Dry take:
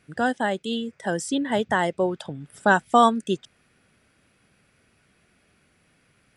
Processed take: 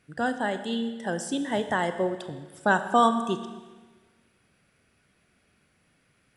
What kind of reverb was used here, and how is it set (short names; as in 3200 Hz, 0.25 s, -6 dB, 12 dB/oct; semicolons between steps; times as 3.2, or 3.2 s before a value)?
Schroeder reverb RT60 1.4 s, combs from 27 ms, DRR 9 dB; gain -4 dB